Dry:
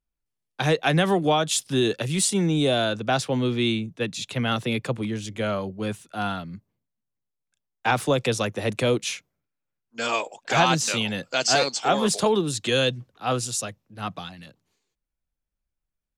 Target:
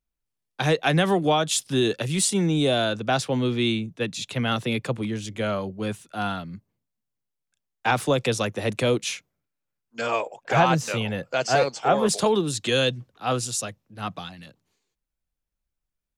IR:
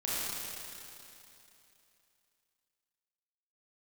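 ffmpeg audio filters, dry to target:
-filter_complex "[0:a]asettb=1/sr,asplit=3[a][b][c];[a]atrim=end=10.014[d];[b]atrim=start=10.01:end=12.09,asetpts=PTS-STARTPTS,afade=t=in:d=0.004:c=qsin,afade=t=out:st=2.076:d=0.004:c=qsin,equalizer=f=125:t=o:w=1:g=6,equalizer=f=250:t=o:w=1:g=-4,equalizer=f=500:t=o:w=1:g=4,equalizer=f=4k:t=o:w=1:g=-8,equalizer=f=8k:t=o:w=1:g=-8[e];[c]atrim=start=12.086[f];[d][e]acrossfade=d=0.004:c1=hsin:c2=qsin[g];[g][f]acrossfade=d=0.004:c1=qsin:c2=hsin"

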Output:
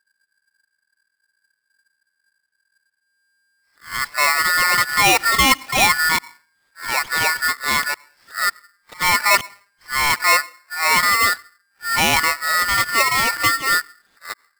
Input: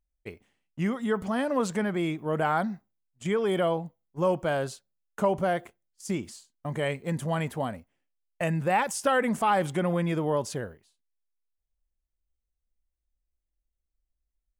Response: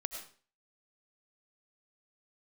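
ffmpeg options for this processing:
-filter_complex "[0:a]areverse,asplit=2[a][b];[1:a]atrim=start_sample=2205,lowpass=1.3k[c];[b][c]afir=irnorm=-1:irlink=0,volume=-17.5dB[d];[a][d]amix=inputs=2:normalize=0,aresample=8000,aresample=44100,aeval=exprs='val(0)*sgn(sin(2*PI*1600*n/s))':c=same,volume=8.5dB"

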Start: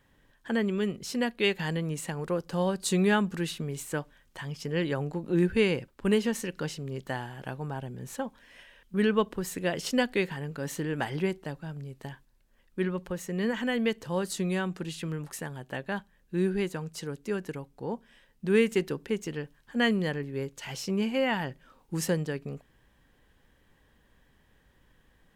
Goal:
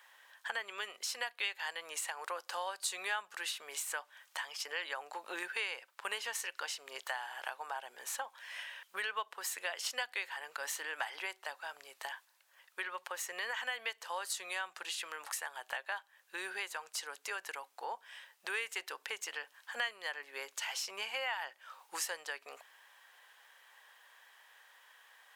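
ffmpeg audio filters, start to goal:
-af "highpass=f=780:w=0.5412,highpass=f=780:w=1.3066,acompressor=threshold=-48dB:ratio=3,volume=9dB"

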